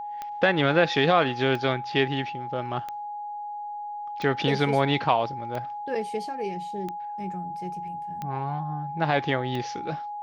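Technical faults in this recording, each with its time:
tick 45 rpm -20 dBFS
whine 830 Hz -32 dBFS

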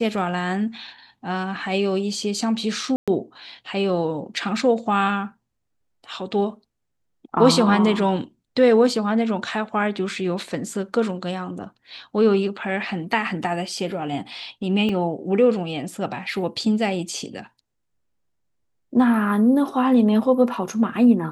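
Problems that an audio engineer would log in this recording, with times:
2.96–3.08 s: dropout 116 ms
14.89 s: dropout 2.7 ms

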